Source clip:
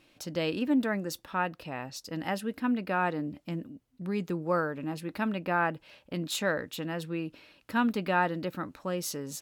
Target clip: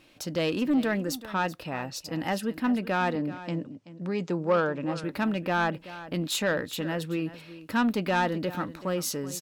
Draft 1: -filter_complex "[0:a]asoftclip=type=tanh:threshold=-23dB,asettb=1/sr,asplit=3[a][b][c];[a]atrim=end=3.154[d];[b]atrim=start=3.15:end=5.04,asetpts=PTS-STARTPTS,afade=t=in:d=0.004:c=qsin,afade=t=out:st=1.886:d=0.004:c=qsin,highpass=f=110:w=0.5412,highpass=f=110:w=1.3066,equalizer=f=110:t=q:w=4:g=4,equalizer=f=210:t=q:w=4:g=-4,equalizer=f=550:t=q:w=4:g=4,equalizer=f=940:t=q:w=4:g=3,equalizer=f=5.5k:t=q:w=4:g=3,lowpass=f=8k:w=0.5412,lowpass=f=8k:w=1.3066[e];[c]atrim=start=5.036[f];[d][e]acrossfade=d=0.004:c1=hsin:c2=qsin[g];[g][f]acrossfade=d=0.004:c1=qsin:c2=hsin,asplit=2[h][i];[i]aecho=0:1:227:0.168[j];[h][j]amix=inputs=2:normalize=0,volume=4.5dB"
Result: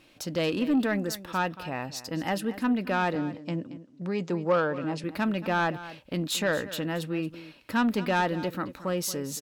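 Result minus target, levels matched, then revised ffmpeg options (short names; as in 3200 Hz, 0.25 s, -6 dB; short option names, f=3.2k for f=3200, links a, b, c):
echo 0.154 s early
-filter_complex "[0:a]asoftclip=type=tanh:threshold=-23dB,asettb=1/sr,asplit=3[a][b][c];[a]atrim=end=3.154[d];[b]atrim=start=3.15:end=5.04,asetpts=PTS-STARTPTS,afade=t=in:d=0.004:c=qsin,afade=t=out:st=1.886:d=0.004:c=qsin,highpass=f=110:w=0.5412,highpass=f=110:w=1.3066,equalizer=f=110:t=q:w=4:g=4,equalizer=f=210:t=q:w=4:g=-4,equalizer=f=550:t=q:w=4:g=4,equalizer=f=940:t=q:w=4:g=3,equalizer=f=5.5k:t=q:w=4:g=3,lowpass=f=8k:w=0.5412,lowpass=f=8k:w=1.3066[e];[c]atrim=start=5.036[f];[d][e]acrossfade=d=0.004:c1=hsin:c2=qsin[g];[g][f]acrossfade=d=0.004:c1=qsin:c2=hsin,asplit=2[h][i];[i]aecho=0:1:381:0.168[j];[h][j]amix=inputs=2:normalize=0,volume=4.5dB"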